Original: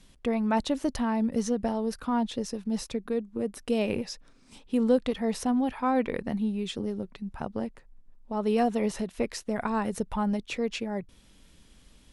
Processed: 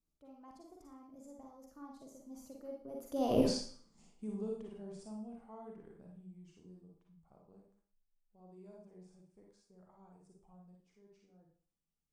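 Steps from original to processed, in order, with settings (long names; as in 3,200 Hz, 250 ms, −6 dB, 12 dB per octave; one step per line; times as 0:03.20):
source passing by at 0:03.43, 52 m/s, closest 2.6 metres
flat-topped bell 2,500 Hz −10 dB
four-comb reverb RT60 0.47 s, DRR −1 dB
level +5 dB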